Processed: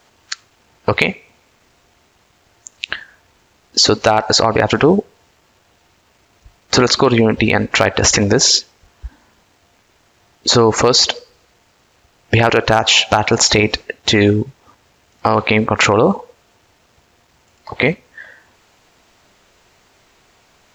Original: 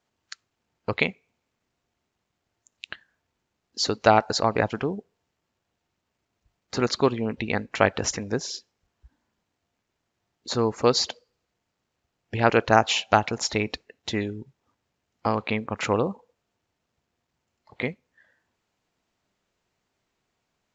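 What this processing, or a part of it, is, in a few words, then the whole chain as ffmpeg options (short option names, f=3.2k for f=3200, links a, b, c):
loud club master: -af "equalizer=f=180:t=o:w=1.8:g=-5.5,acompressor=threshold=-24dB:ratio=2.5,asoftclip=type=hard:threshold=-14.5dB,alimiter=level_in=25.5dB:limit=-1dB:release=50:level=0:latency=1,volume=-1dB"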